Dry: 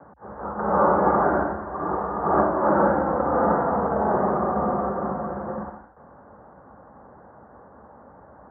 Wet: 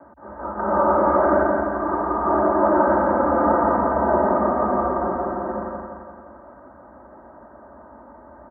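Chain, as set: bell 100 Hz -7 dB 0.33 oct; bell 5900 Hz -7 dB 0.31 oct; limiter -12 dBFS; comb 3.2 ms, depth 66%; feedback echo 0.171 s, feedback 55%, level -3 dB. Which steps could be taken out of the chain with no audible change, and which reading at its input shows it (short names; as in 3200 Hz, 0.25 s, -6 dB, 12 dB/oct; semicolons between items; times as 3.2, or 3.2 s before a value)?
bell 5900 Hz: input band ends at 1800 Hz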